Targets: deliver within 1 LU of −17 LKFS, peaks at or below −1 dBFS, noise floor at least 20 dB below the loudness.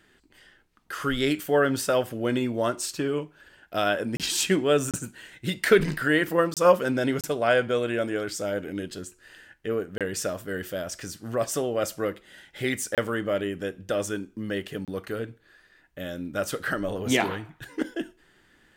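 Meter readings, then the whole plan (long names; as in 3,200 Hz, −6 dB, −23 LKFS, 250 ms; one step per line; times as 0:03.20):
number of dropouts 7; longest dropout 27 ms; integrated loudness −27.0 LKFS; sample peak −6.0 dBFS; target loudness −17.0 LKFS
→ repair the gap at 0:04.17/0:04.91/0:06.54/0:07.21/0:09.98/0:12.95/0:14.85, 27 ms
level +10 dB
brickwall limiter −1 dBFS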